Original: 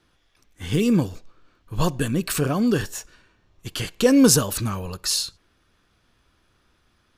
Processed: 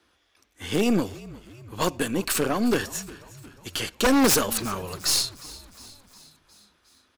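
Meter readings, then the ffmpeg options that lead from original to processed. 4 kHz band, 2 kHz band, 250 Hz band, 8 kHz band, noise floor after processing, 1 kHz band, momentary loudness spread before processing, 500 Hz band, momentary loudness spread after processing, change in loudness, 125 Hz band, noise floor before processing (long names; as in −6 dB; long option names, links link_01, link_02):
+0.5 dB, +2.0 dB, −4.0 dB, −1.5 dB, −67 dBFS, +3.0 dB, 18 LU, −2.5 dB, 22 LU, −2.5 dB, −9.0 dB, −66 dBFS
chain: -filter_complex "[0:a]highpass=76,equalizer=frequency=140:width_type=o:width=0.82:gain=-14.5,acrossover=split=130[link_01][link_02];[link_01]alimiter=level_in=17dB:limit=-24dB:level=0:latency=1,volume=-17dB[link_03];[link_03][link_02]amix=inputs=2:normalize=0,aeval=exprs='0.794*(cos(1*acos(clip(val(0)/0.794,-1,1)))-cos(1*PI/2))+0.141*(cos(5*acos(clip(val(0)/0.794,-1,1)))-cos(5*PI/2))+0.0891*(cos(7*acos(clip(val(0)/0.794,-1,1)))-cos(7*PI/2))+0.0891*(cos(8*acos(clip(val(0)/0.794,-1,1)))-cos(8*PI/2))':channel_layout=same,aeval=exprs='0.251*(abs(mod(val(0)/0.251+3,4)-2)-1)':channel_layout=same,asplit=6[link_04][link_05][link_06][link_07][link_08][link_09];[link_05]adelay=358,afreqshift=-52,volume=-19.5dB[link_10];[link_06]adelay=716,afreqshift=-104,volume=-24.1dB[link_11];[link_07]adelay=1074,afreqshift=-156,volume=-28.7dB[link_12];[link_08]adelay=1432,afreqshift=-208,volume=-33.2dB[link_13];[link_09]adelay=1790,afreqshift=-260,volume=-37.8dB[link_14];[link_04][link_10][link_11][link_12][link_13][link_14]amix=inputs=6:normalize=0"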